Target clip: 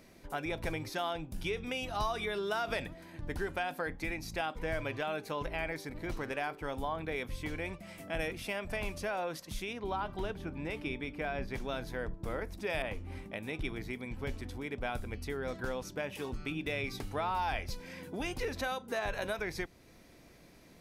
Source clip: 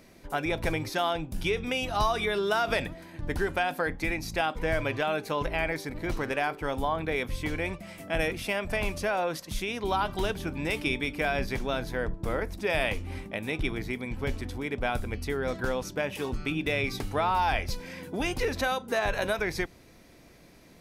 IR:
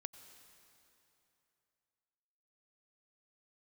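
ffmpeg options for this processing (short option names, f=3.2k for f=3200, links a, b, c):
-filter_complex "[0:a]asettb=1/sr,asplit=3[a][b][c];[a]atrim=end=9.734[d];[b]atrim=start=9.73:end=11.54,asetpts=PTS-STARTPTS,afade=t=in:d=0.004:c=qsin,afade=t=out:st=1.806:d=0.004:c=qsin,highshelf=f=3.6k:g=-12[e];[c]atrim=start=11.536[f];[d][e]acrossfade=d=0.004:c1=hsin:c2=qsin[g];[g][f]acrossfade=d=0.004:c1=qsin:c2=hsin,asplit=2[h][i];[i]acompressor=threshold=-41dB:ratio=6,volume=-2dB[j];[h][j]amix=inputs=2:normalize=0,asettb=1/sr,asplit=3[k][l][m];[k]atrim=end=12.824[n];[l]atrim=start=12.82:end=13.54,asetpts=PTS-STARTPTS,afade=t=in:d=0.004:c=qsin,afade=t=out:st=0.716:d=0.004:c=qsin,adynamicequalizer=threshold=0.00708:dfrequency=2100:dqfactor=0.7:tfrequency=2100:tqfactor=0.7:attack=5:release=100:ratio=0.375:range=3.5:mode=cutabove:tftype=highshelf[o];[m]atrim=start=13.536[p];[n][o]acrossfade=d=0.004:c1=hsin:c2=qsin[q];[q][p]acrossfade=d=0.004:c1=qsin:c2=hsin,volume=-8.5dB"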